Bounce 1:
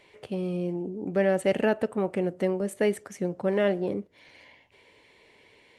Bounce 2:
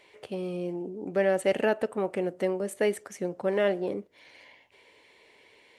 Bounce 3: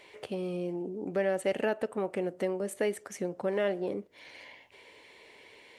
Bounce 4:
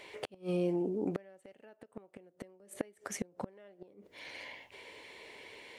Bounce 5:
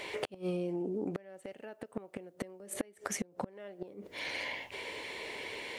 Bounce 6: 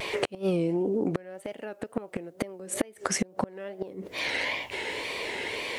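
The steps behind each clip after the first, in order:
bass and treble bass −8 dB, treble +1 dB
downward compressor 1.5 to 1, threshold −43 dBFS, peak gain reduction 8.5 dB; level +3.5 dB
gate with flip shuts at −25 dBFS, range −30 dB; level +3 dB
downward compressor 8 to 1, threshold −42 dBFS, peak gain reduction 14.5 dB; level +9.5 dB
tape wow and flutter 110 cents; level +8.5 dB

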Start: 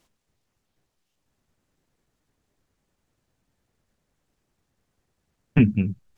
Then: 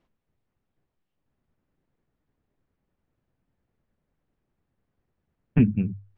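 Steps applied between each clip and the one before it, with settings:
low-pass filter 2,600 Hz 12 dB per octave
low-shelf EQ 500 Hz +5 dB
mains-hum notches 50/100 Hz
level −6 dB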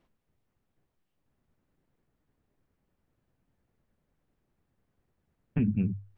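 brickwall limiter −20 dBFS, peak gain reduction 11.5 dB
level +1 dB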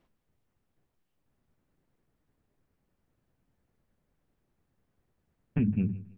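repeating echo 161 ms, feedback 31%, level −19 dB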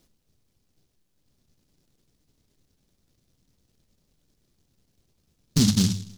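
short delay modulated by noise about 4,800 Hz, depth 0.29 ms
level +7 dB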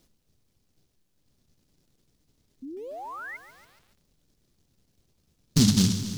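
sound drawn into the spectrogram rise, 0:02.62–0:03.37, 250–2,200 Hz −38 dBFS
feedback echo at a low word length 142 ms, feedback 80%, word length 8 bits, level −13 dB

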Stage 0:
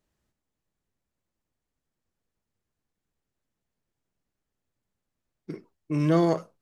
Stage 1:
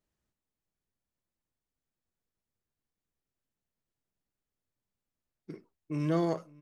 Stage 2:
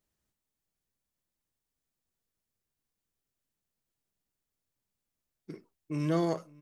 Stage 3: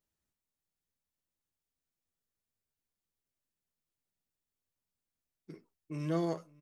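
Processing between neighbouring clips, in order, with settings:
slap from a distant wall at 94 metres, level −24 dB; level −7 dB
high-shelf EQ 4,300 Hz +6 dB
double-tracking delay 12 ms −11 dB; level −5.5 dB

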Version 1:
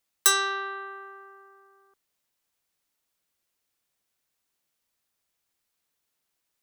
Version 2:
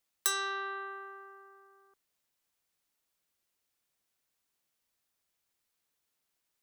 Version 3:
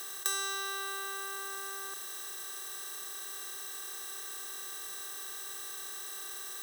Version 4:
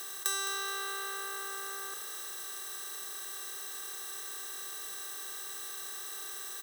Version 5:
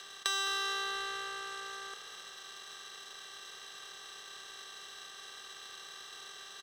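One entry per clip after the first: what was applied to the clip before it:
downward compressor 2 to 1, threshold −30 dBFS, peak gain reduction 8.5 dB; level −2.5 dB
compressor on every frequency bin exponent 0.2; level −4 dB
echo with shifted repeats 212 ms, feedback 43%, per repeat +59 Hz, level −11 dB
loudspeaker in its box 100–6,000 Hz, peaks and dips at 170 Hz +6 dB, 310 Hz −9 dB, 3,100 Hz +8 dB; power curve on the samples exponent 1.4; level +6.5 dB

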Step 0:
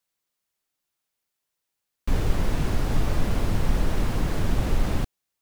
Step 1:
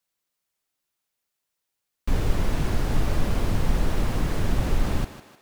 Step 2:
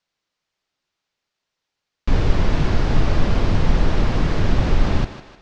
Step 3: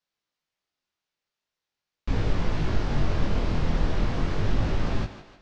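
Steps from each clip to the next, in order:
feedback echo with a high-pass in the loop 153 ms, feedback 49%, high-pass 280 Hz, level −10.5 dB
low-pass filter 5,700 Hz 24 dB per octave; convolution reverb, pre-delay 3 ms, DRR 18 dB; level +6 dB
chorus effect 0.41 Hz, delay 18 ms, depth 7.3 ms; level −4 dB

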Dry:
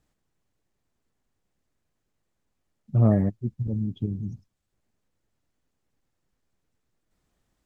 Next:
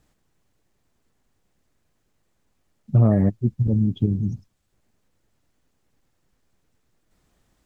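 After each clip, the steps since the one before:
downward compressor, threshold −20 dBFS, peak gain reduction 7 dB
level +8 dB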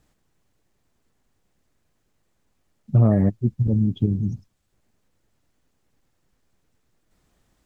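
no processing that can be heard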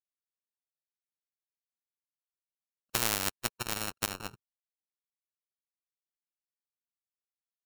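samples sorted by size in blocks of 32 samples
power curve on the samples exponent 3
every bin compressed towards the loudest bin 4 to 1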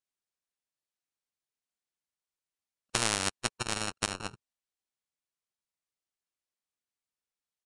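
downsampling to 22,050 Hz
level +2.5 dB

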